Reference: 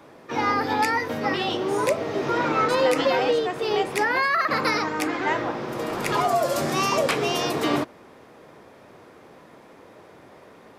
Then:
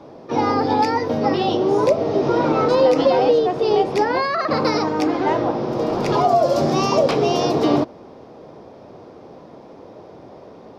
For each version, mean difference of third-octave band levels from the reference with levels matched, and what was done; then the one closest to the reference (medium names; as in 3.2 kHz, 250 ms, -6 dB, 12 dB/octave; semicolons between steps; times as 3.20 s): 5.0 dB: FFT filter 740 Hz 0 dB, 1.8 kHz -14 dB, 5.4 kHz -4 dB, 8.2 kHz -21 dB; in parallel at +0.5 dB: compression, threshold -22 dBFS, peak gain reduction 6 dB; on the sum: trim +2 dB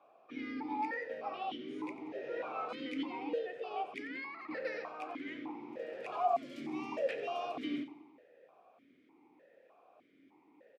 9.0 dB: on a send: feedback delay 90 ms, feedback 56%, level -14 dB; on the sum: stepped vowel filter 3.3 Hz; trim -5.5 dB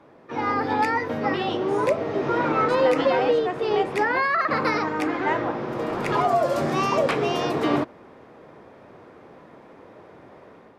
3.5 dB: level rider gain up to 5 dB; low-pass 1.8 kHz 6 dB/octave; trim -3 dB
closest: third